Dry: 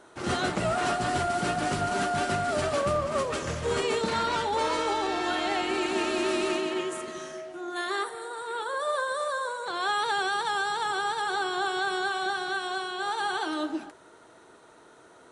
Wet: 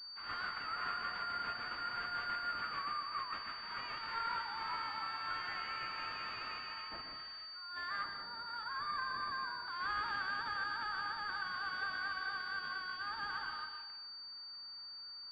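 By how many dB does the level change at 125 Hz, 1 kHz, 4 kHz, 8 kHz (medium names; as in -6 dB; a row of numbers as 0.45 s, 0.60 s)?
-23.5 dB, -11.5 dB, -8.0 dB, under -30 dB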